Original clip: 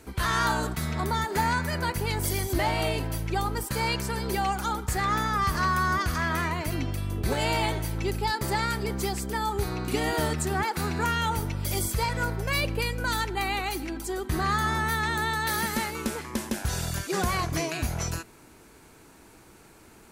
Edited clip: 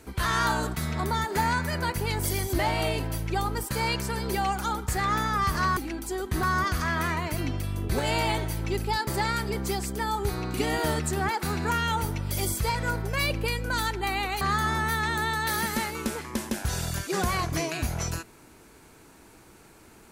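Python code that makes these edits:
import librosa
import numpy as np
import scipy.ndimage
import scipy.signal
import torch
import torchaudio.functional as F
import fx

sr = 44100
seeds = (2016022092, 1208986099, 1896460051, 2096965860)

y = fx.edit(x, sr, fx.move(start_s=13.75, length_s=0.66, to_s=5.77), tone=tone)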